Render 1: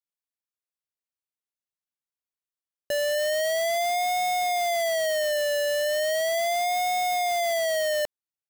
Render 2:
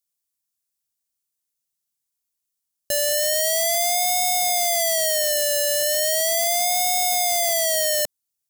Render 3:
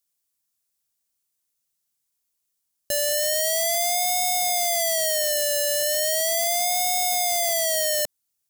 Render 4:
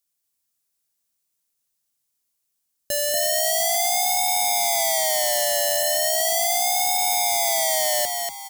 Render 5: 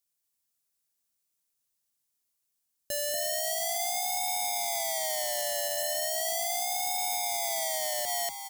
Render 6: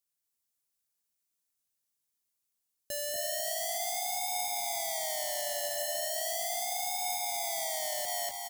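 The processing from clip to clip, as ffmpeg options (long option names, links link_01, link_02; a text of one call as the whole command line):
ffmpeg -i in.wav -af "bass=frequency=250:gain=7,treble=frequency=4000:gain=15" out.wav
ffmpeg -i in.wav -af "alimiter=limit=-14dB:level=0:latency=1,volume=3.5dB" out.wav
ffmpeg -i in.wav -filter_complex "[0:a]asplit=5[link_01][link_02][link_03][link_04][link_05];[link_02]adelay=237,afreqshift=94,volume=-4dB[link_06];[link_03]adelay=474,afreqshift=188,volume=-13.4dB[link_07];[link_04]adelay=711,afreqshift=282,volume=-22.7dB[link_08];[link_05]adelay=948,afreqshift=376,volume=-32.1dB[link_09];[link_01][link_06][link_07][link_08][link_09]amix=inputs=5:normalize=0" out.wav
ffmpeg -i in.wav -af "alimiter=limit=-14.5dB:level=0:latency=1:release=39,volume=-4dB" out.wav
ffmpeg -i in.wav -af "aecho=1:1:258:0.473,volume=-4dB" out.wav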